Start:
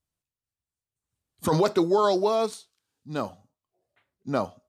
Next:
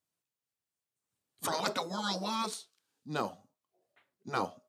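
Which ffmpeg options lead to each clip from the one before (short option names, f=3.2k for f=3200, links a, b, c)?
-af "afftfilt=real='re*lt(hypot(re,im),0.224)':imag='im*lt(hypot(re,im),0.224)':win_size=1024:overlap=0.75,highpass=180"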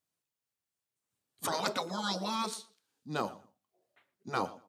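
-filter_complex "[0:a]asplit=2[a][b];[b]adelay=117,lowpass=f=3.5k:p=1,volume=-19dB,asplit=2[c][d];[d]adelay=117,lowpass=f=3.5k:p=1,volume=0.21[e];[a][c][e]amix=inputs=3:normalize=0"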